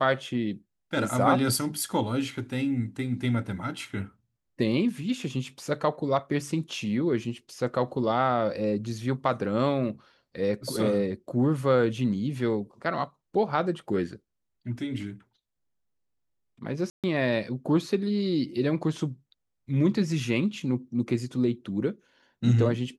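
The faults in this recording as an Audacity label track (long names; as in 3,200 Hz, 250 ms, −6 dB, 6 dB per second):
16.900000	17.040000	drop-out 137 ms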